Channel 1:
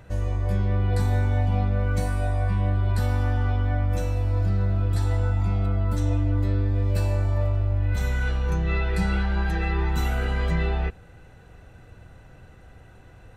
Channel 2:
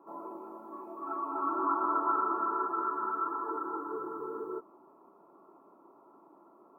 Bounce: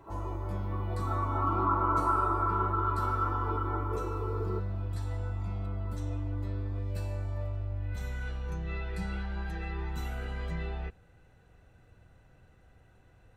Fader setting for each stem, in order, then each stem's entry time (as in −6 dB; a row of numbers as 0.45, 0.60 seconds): −11.5, +1.5 decibels; 0.00, 0.00 seconds